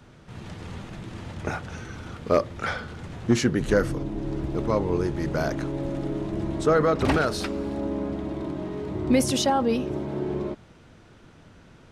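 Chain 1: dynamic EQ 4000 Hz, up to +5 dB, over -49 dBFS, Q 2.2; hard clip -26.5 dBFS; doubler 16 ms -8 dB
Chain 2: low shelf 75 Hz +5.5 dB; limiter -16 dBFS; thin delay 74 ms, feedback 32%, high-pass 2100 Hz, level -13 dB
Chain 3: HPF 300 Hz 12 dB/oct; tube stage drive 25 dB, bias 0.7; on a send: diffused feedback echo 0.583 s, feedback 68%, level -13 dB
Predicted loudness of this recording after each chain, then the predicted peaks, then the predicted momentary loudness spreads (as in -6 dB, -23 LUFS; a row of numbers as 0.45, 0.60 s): -30.5, -28.5, -33.5 LUFS; -23.5, -15.0, -20.5 dBFS; 10, 13, 17 LU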